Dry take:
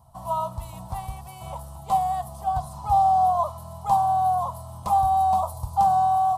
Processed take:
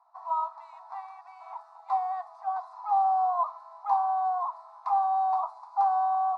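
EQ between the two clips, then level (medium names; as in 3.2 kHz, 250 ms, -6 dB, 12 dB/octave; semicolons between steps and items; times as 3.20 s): brick-wall FIR high-pass 620 Hz; low-pass 3.8 kHz 24 dB/octave; static phaser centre 1.3 kHz, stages 4; 0.0 dB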